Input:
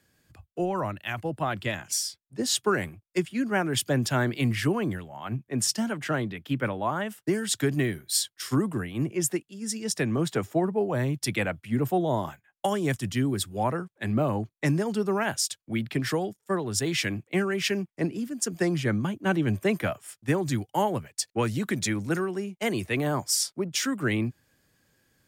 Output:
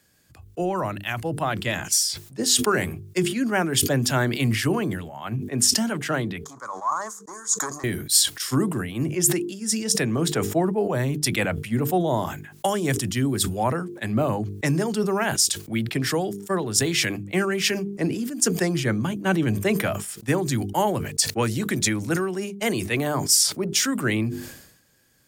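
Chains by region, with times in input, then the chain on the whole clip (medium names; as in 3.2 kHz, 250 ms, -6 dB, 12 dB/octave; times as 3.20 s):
6.44–7.84 s: waveshaping leveller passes 2 + two resonant band-passes 2.7 kHz, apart 2.6 oct
whole clip: tone controls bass 0 dB, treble +5 dB; hum notches 50/100/150/200/250/300/350/400/450 Hz; decay stretcher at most 69 dB/s; trim +3 dB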